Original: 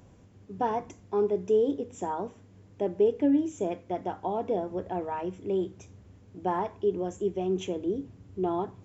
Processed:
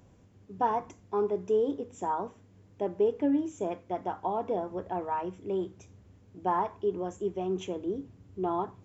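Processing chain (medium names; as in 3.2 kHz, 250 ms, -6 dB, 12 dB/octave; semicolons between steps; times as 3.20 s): dynamic bell 1.1 kHz, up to +8 dB, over -46 dBFS, Q 1.4; trim -3.5 dB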